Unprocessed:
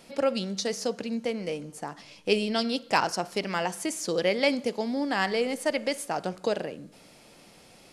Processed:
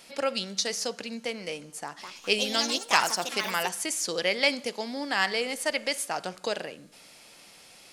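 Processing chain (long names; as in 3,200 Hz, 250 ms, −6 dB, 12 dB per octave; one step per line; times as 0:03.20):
tilt shelving filter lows −6.5 dB, about 790 Hz
0:01.80–0:03.91: delay with pitch and tempo change per echo 212 ms, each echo +4 semitones, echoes 3, each echo −6 dB
level −1.5 dB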